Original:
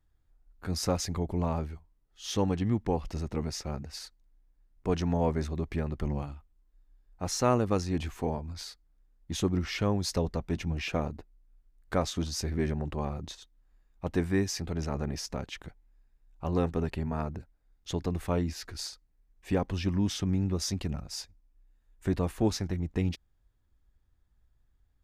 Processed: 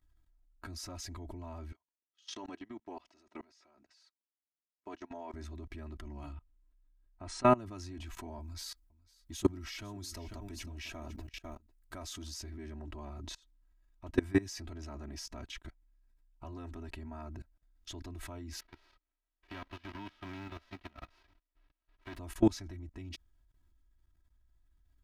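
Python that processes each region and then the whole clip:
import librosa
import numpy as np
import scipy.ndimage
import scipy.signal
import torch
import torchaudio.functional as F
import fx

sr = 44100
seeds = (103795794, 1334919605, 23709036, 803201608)

y = fx.chain(x, sr, fx.bandpass_edges(low_hz=380.0, high_hz=6400.0),
    fx.level_steps(step_db=19), at=(1.72, 5.34))
y = fx.chain(y, sr, fx.brickwall_lowpass(high_hz=9700.0),
    fx.peak_eq(hz=6300.0, db=-11.5, octaves=0.95), at=(6.32, 7.58))
y = fx.chain(y, sr, fx.high_shelf(hz=7200.0, db=11.0),
    fx.echo_single(ms=500, db=-15.0), at=(8.4, 12.34))
y = fx.envelope_flatten(y, sr, power=0.3, at=(18.59, 22.16), fade=0.02)
y = fx.level_steps(y, sr, step_db=15, at=(18.59, 22.16), fade=0.02)
y = fx.air_absorb(y, sr, metres=340.0, at=(18.59, 22.16), fade=0.02)
y = fx.peak_eq(y, sr, hz=480.0, db=-8.0, octaves=0.51)
y = y + 0.84 * np.pad(y, (int(3.1 * sr / 1000.0), 0))[:len(y)]
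y = fx.level_steps(y, sr, step_db=23)
y = y * librosa.db_to_amplitude(2.0)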